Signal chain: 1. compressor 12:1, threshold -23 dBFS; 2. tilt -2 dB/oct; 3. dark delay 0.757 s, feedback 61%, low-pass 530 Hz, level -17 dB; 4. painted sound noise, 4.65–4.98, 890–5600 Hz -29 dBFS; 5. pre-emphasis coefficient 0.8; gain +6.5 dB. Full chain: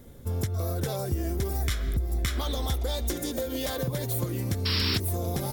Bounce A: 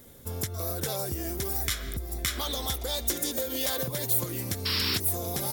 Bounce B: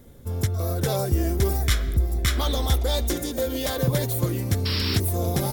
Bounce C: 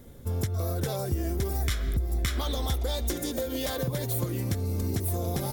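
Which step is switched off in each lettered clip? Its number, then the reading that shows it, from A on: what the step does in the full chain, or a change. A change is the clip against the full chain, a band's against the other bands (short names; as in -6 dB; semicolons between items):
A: 2, 8 kHz band +7.5 dB; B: 1, mean gain reduction 4.5 dB; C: 4, momentary loudness spread change -3 LU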